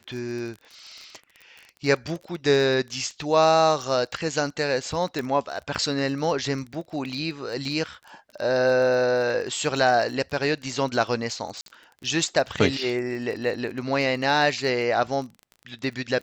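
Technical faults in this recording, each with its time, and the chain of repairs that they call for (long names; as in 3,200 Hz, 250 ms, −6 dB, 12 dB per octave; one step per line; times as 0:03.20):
surface crackle 22 per second −33 dBFS
0:05.19: click −16 dBFS
0:11.61–0:11.66: drop-out 52 ms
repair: click removal
repair the gap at 0:11.61, 52 ms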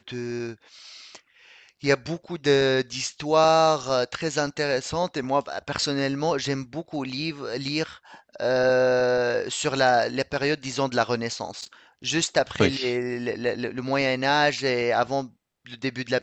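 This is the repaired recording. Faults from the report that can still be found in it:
0:05.19: click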